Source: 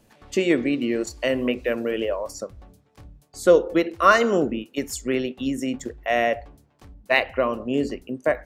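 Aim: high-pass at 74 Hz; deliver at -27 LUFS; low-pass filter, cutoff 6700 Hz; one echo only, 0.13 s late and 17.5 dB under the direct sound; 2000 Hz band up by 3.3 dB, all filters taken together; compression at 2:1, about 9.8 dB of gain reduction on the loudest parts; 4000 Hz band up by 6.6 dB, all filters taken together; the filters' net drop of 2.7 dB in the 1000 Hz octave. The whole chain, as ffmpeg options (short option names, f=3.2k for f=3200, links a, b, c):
-af "highpass=74,lowpass=6.7k,equalizer=f=1k:t=o:g=-6,equalizer=f=2k:t=o:g=3.5,equalizer=f=4k:t=o:g=9,acompressor=threshold=-29dB:ratio=2,aecho=1:1:130:0.133,volume=2.5dB"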